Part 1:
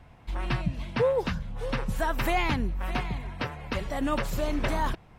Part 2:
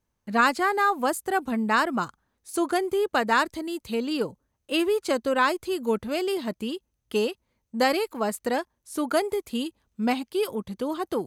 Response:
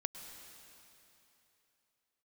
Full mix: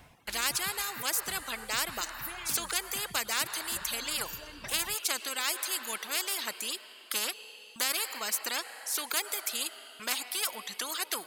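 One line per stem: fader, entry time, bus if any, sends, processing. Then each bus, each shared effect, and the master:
−4.5 dB, 0.00 s, no send, first-order pre-emphasis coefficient 0.8; automatic ducking −10 dB, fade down 0.45 s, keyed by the second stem
−1.0 dB, 0.00 s, send −6 dB, high-pass filter 1,500 Hz 12 dB per octave; noise gate with hold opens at −56 dBFS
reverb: on, RT60 3.1 s, pre-delay 98 ms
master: reverb reduction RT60 1.8 s; low-shelf EQ 94 Hz −9 dB; every bin compressed towards the loudest bin 4 to 1

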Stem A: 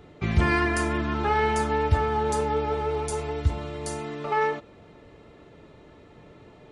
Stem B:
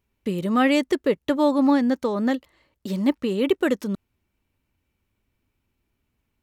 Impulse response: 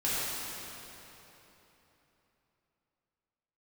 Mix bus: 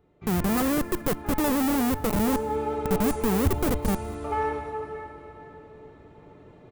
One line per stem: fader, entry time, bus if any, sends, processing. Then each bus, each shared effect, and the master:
0:01.93 −16.5 dB → 0:02.59 −5 dB, 0.00 s, send −8.5 dB, no echo send, no processing
+0.5 dB, 0.00 s, no send, echo send −23 dB, low-shelf EQ 84 Hz +8.5 dB; comparator with hysteresis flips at −22 dBFS; high-shelf EQ 6,700 Hz +10 dB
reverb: on, RT60 3.5 s, pre-delay 3 ms
echo: repeating echo 200 ms, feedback 33%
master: parametric band 4,400 Hz −8 dB 2.4 octaves

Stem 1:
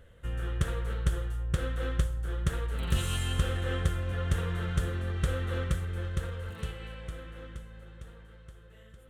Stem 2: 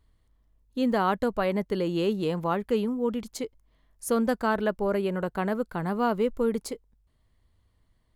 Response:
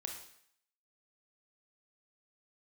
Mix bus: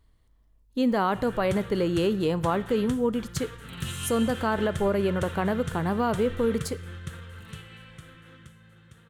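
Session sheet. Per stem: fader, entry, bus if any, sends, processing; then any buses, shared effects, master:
+0.5 dB, 0.90 s, no send, high-pass filter 100 Hz 24 dB per octave; parametric band 550 Hz −10.5 dB 1.4 octaves
+1.0 dB, 0.00 s, send −11 dB, no processing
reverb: on, RT60 0.65 s, pre-delay 24 ms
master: brickwall limiter −15 dBFS, peak gain reduction 6 dB

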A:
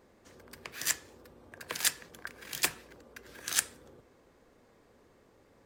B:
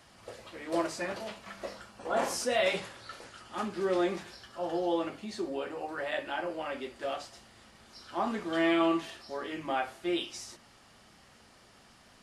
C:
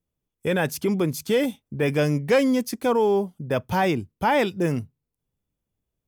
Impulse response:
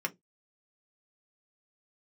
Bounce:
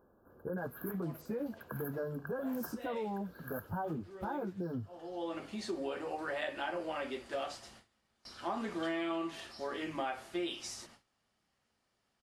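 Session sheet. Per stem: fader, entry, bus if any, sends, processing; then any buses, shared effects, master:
−4.0 dB, 0.00 s, bus A, no send, soft clipping −10.5 dBFS, distortion −20 dB
−0.5 dB, 0.30 s, no bus, no send, noise gate with hold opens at −44 dBFS; automatic ducking −19 dB, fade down 0.60 s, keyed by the third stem
−9.0 dB, 0.00 s, bus A, no send, bass and treble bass +2 dB, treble −5 dB; barber-pole flanger 10.2 ms −0.76 Hz
bus A: 0.0 dB, linear-phase brick-wall band-stop 1,700–11,000 Hz; brickwall limiter −28.5 dBFS, peak gain reduction 8.5 dB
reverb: not used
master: downward compressor, threshold −33 dBFS, peak gain reduction 9.5 dB

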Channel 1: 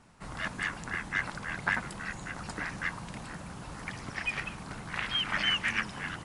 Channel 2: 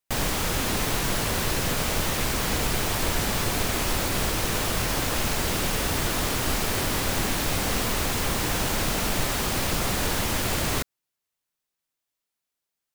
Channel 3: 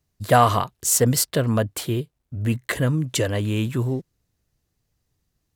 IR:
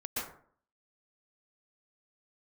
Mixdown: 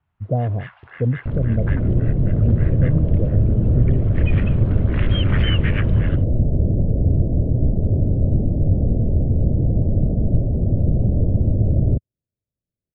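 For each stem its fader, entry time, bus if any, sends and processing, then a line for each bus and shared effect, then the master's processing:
0:03.95 −17.5 dB → 0:04.44 −10 dB, 0.00 s, no send, automatic gain control gain up to 11.5 dB; elliptic band-pass filter 660–3,300 Hz, stop band 40 dB
−6.5 dB, 1.15 s, no send, automatic gain control gain up to 6 dB; elliptic low-pass filter 620 Hz, stop band 50 dB; low-shelf EQ 230 Hz +10.5 dB
−6.0 dB, 0.00 s, no send, Butterworth low-pass 650 Hz 36 dB per octave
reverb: not used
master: parametric band 100 Hz +9.5 dB 1.7 octaves

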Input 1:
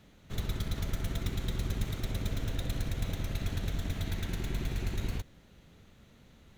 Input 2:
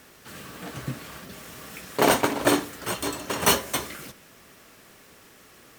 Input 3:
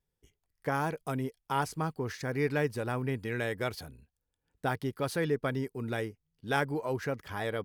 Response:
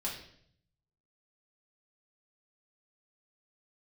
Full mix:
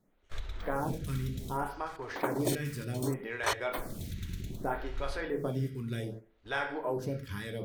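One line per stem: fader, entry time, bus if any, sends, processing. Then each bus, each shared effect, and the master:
−1.0 dB, 0.00 s, muted 0:01.68–0:03.77, bus A, send −16.5 dB, no processing
+0.5 dB, 0.00 s, no bus, no send, gate pattern "...x..xxxx.xx.xx" 153 BPM −24 dB; notch filter 2,800 Hz, Q 6.3; automatic ducking −8 dB, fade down 0.45 s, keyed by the third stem
+2.5 dB, 0.00 s, bus A, send −8.5 dB, no processing
bus A: 0.0 dB, downward compressor 6 to 1, threshold −36 dBFS, peak gain reduction 14 dB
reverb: on, RT60 0.65 s, pre-delay 3 ms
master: noise gate −40 dBFS, range −11 dB; low-shelf EQ 110 Hz +5.5 dB; phaser with staggered stages 0.65 Hz

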